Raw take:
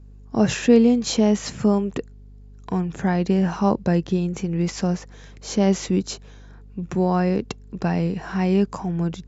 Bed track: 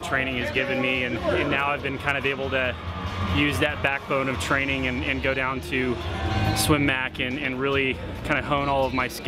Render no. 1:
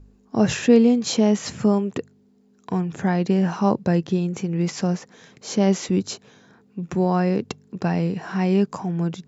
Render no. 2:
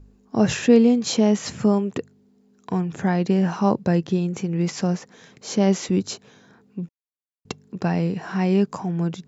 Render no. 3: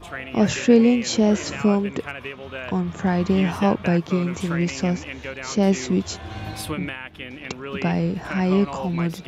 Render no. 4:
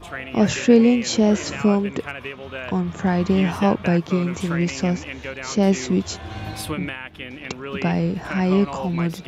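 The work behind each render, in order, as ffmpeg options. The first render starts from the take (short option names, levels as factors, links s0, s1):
-af "bandreject=f=50:t=h:w=4,bandreject=f=100:t=h:w=4,bandreject=f=150:t=h:w=4"
-filter_complex "[0:a]asplit=3[s0][s1][s2];[s0]atrim=end=6.89,asetpts=PTS-STARTPTS,afade=t=out:st=6.886:d=0.004:c=hsin[s3];[s1]atrim=start=6.89:end=7.45,asetpts=PTS-STARTPTS,volume=0[s4];[s2]atrim=start=7.45,asetpts=PTS-STARTPTS,afade=t=in:d=0.004:c=hsin[s5];[s3][s4][s5]concat=n=3:v=0:a=1"
-filter_complex "[1:a]volume=0.355[s0];[0:a][s0]amix=inputs=2:normalize=0"
-af "volume=1.12"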